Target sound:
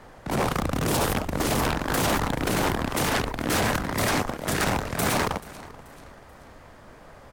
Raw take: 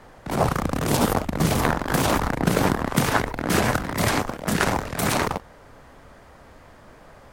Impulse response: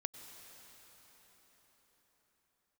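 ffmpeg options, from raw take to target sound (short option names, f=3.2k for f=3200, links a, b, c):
-af "afftfilt=real='re*lt(hypot(re,im),0.631)':imag='im*lt(hypot(re,im),0.631)':win_size=1024:overlap=0.75,aecho=1:1:434|868|1302:0.0891|0.0374|0.0157,aeval=exprs='0.141*(abs(mod(val(0)/0.141+3,4)-2)-1)':c=same"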